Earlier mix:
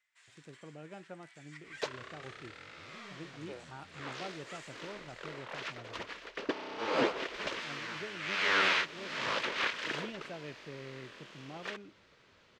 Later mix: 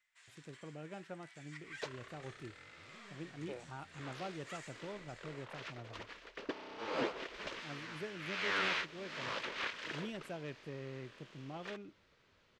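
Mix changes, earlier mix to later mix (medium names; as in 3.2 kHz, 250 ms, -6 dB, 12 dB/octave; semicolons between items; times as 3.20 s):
speech: remove low-pass 5.7 kHz; second sound -7.0 dB; master: add bass shelf 67 Hz +9.5 dB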